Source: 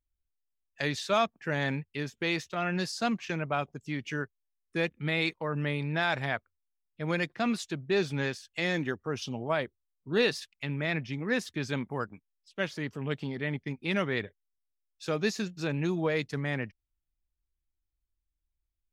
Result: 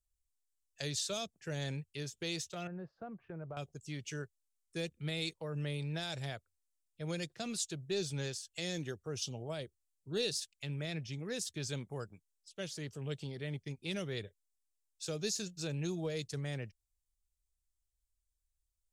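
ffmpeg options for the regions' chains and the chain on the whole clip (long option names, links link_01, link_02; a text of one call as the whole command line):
ffmpeg -i in.wav -filter_complex "[0:a]asettb=1/sr,asplit=3[link_01][link_02][link_03];[link_01]atrim=end=2.674[link_04];[link_02]atrim=start=2.67:end=3.57,asetpts=PTS-STARTPTS,afade=type=in:duration=0.004:curve=qsin,afade=type=out:start_time=0.896:duration=0.004:curve=qsin,lowpass=frequency=1400:width=0.5412,lowpass=frequency=1400:width=1.3066,acompressor=threshold=-36dB:ratio=2:attack=3.2:release=140:knee=1:detection=peak[link_05];[link_03]atrim=start=3.566[link_06];[link_04][link_05]acrossfade=duration=0.004:curve1=hsin:curve2=qsin[link_07];[link_07][link_06]acrossfade=duration=0.004:curve1=qsin:curve2=hsin,equalizer=frequency=250:width_type=o:width=1:gain=-11,equalizer=frequency=1000:width_type=o:width=1:gain=-10,equalizer=frequency=2000:width_type=o:width=1:gain=-9,equalizer=frequency=8000:width_type=o:width=1:gain=10,acrossover=split=450|3000[link_08][link_09][link_10];[link_09]acompressor=threshold=-42dB:ratio=6[link_11];[link_08][link_11][link_10]amix=inputs=3:normalize=0,volume=-1.5dB" out.wav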